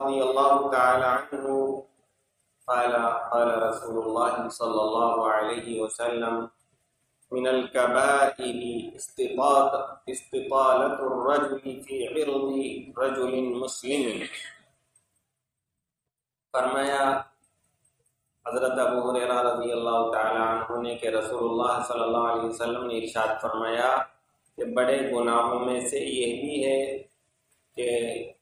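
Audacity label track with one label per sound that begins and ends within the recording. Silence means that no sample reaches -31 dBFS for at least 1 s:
16.540000	17.220000	sound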